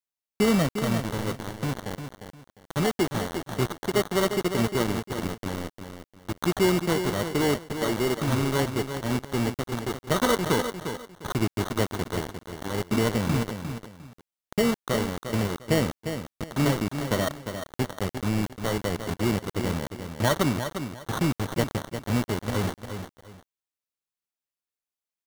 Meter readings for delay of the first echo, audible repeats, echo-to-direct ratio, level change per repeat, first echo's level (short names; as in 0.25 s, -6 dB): 0.352 s, 2, -8.0 dB, -11.5 dB, -8.5 dB